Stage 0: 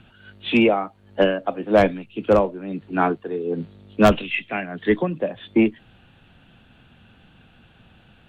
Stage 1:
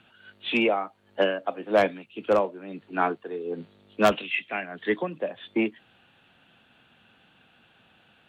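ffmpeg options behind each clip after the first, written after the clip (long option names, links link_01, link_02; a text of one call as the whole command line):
ffmpeg -i in.wav -af "highpass=frequency=490:poles=1,volume=-2.5dB" out.wav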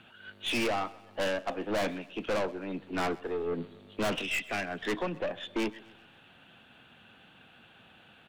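ffmpeg -i in.wav -af "aeval=exprs='(tanh(35.5*val(0)+0.3)-tanh(0.3))/35.5':channel_layout=same,aecho=1:1:129|258|387|516:0.0891|0.0446|0.0223|0.0111,volume=3.5dB" out.wav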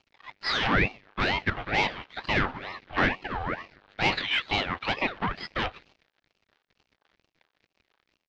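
ffmpeg -i in.wav -af "aeval=exprs='sgn(val(0))*max(abs(val(0))-0.00299,0)':channel_layout=same,highpass=frequency=390:width=0.5412,highpass=frequency=390:width=1.3066,equalizer=frequency=490:width_type=q:width=4:gain=-7,equalizer=frequency=830:width_type=q:width=4:gain=5,equalizer=frequency=1200:width_type=q:width=4:gain=8,lowpass=frequency=4100:width=0.5412,lowpass=frequency=4100:width=1.3066,aeval=exprs='val(0)*sin(2*PI*940*n/s+940*0.65/2.2*sin(2*PI*2.2*n/s))':channel_layout=same,volume=9dB" out.wav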